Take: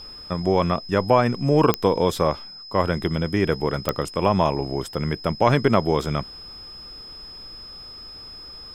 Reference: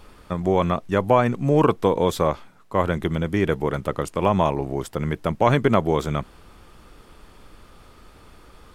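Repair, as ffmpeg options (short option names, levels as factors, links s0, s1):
-af "adeclick=t=4,bandreject=f=5100:w=30"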